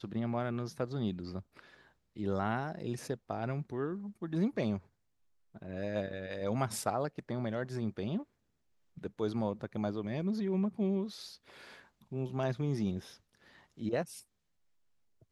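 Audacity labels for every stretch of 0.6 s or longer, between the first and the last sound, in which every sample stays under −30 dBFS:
1.390000	2.200000	silence
4.760000	5.740000	silence
8.180000	9.050000	silence
11.040000	12.150000	silence
12.980000	13.830000	silence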